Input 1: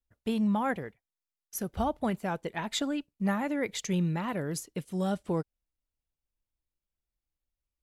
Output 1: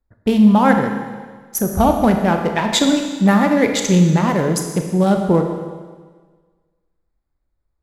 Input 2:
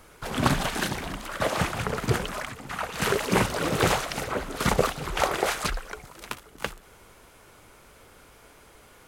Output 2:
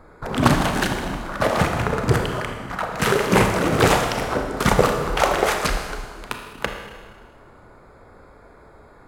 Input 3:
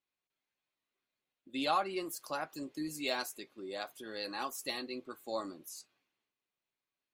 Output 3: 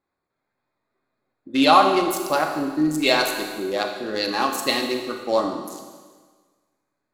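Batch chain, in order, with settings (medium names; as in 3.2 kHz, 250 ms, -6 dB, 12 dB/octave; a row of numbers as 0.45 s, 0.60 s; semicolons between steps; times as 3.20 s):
local Wiener filter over 15 samples; Schroeder reverb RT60 1.5 s, combs from 26 ms, DRR 4 dB; peak normalisation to -1.5 dBFS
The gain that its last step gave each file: +15.0 dB, +6.0 dB, +16.5 dB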